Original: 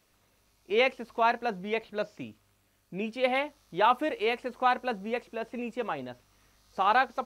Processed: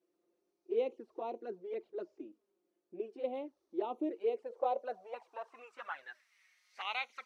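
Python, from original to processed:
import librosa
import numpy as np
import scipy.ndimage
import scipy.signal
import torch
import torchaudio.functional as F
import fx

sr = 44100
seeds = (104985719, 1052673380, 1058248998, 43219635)

y = fx.bass_treble(x, sr, bass_db=-12, treble_db=14)
y = fx.env_flanger(y, sr, rest_ms=6.1, full_db=-23.5)
y = fx.filter_sweep_bandpass(y, sr, from_hz=350.0, to_hz=2100.0, start_s=4.17, end_s=6.33, q=6.2)
y = y * 10.0 ** (8.0 / 20.0)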